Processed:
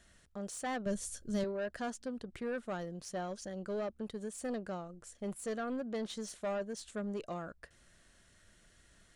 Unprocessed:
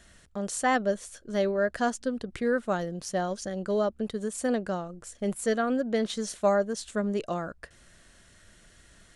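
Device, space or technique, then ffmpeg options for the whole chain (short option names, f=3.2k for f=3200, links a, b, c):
saturation between pre-emphasis and de-emphasis: -filter_complex "[0:a]highshelf=f=5.1k:g=10,asoftclip=type=tanh:threshold=-23.5dB,highshelf=f=5.1k:g=-10,asettb=1/sr,asplit=3[a][b][c];[a]atrim=end=0.864[d];[b]atrim=start=0.86:end=1.44,asetpts=PTS-STARTPTS,afade=t=in:d=0.004:c=qsin,afade=t=out:st=0.576:d=0.004:c=qsin,bass=f=250:g=13,treble=f=4k:g=11[e];[c]atrim=start=1.436[f];[d][e]acrossfade=d=0.004:c1=hsin:c2=qsin[g];[g][f]acrossfade=d=0.004:c1=qsin:c2=hsin,volume=-8dB"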